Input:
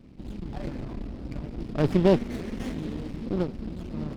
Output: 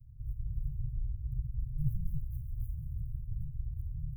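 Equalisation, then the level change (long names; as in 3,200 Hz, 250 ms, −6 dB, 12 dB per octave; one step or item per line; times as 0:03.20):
elliptic band-stop filter 130–850 Hz
inverse Chebyshev band-stop filter 680–3,700 Hz, stop band 80 dB
+3.5 dB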